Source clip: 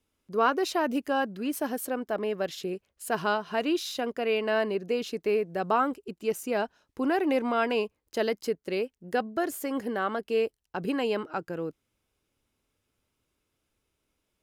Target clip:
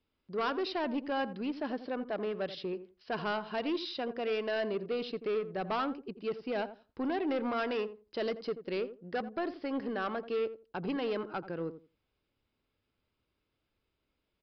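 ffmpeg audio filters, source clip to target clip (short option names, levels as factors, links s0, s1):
-filter_complex "[0:a]aresample=11025,asoftclip=type=tanh:threshold=0.0596,aresample=44100,asplit=2[s0][s1];[s1]adelay=85,lowpass=f=860:p=1,volume=0.282,asplit=2[s2][s3];[s3]adelay=85,lowpass=f=860:p=1,volume=0.2,asplit=2[s4][s5];[s5]adelay=85,lowpass=f=860:p=1,volume=0.2[s6];[s0][s2][s4][s6]amix=inputs=4:normalize=0,volume=0.708"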